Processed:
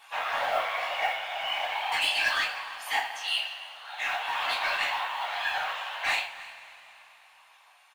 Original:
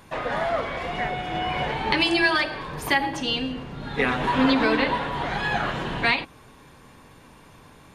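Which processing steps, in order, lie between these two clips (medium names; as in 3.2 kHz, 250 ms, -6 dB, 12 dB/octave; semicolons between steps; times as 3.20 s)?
steep high-pass 670 Hz 72 dB/octave; peaking EQ 2.8 kHz +6.5 dB 0.69 oct; gain riding within 5 dB 2 s; saturation -15.5 dBFS, distortion -15 dB; chorus 0.38 Hz, delay 18 ms, depth 7.5 ms; whisper effect; modulation noise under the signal 28 dB; on a send: delay 308 ms -20 dB; on the sum: two-slope reverb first 0.31 s, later 3.5 s, from -21 dB, DRR -2 dB; trim -5.5 dB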